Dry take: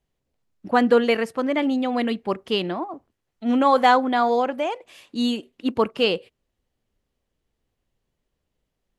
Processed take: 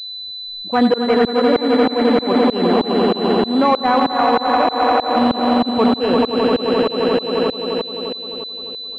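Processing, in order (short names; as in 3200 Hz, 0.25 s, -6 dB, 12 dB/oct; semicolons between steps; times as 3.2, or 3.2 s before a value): on a send: swelling echo 87 ms, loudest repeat 5, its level -8.5 dB; on the sum: reverse; compressor 5:1, threshold -25 dBFS, peak gain reduction 13.5 dB; reverse; tremolo saw up 3.2 Hz, depth 100%; maximiser +24.5 dB; pulse-width modulation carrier 4000 Hz; gain -4.5 dB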